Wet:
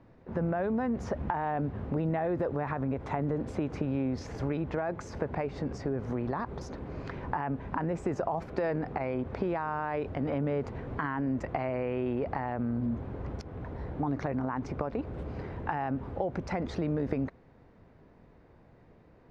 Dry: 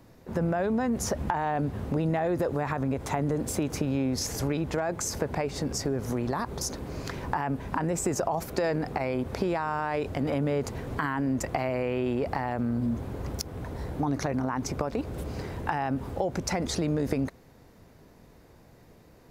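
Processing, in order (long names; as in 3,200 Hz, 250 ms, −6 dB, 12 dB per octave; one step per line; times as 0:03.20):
low-pass filter 2,300 Hz 12 dB per octave
level −3 dB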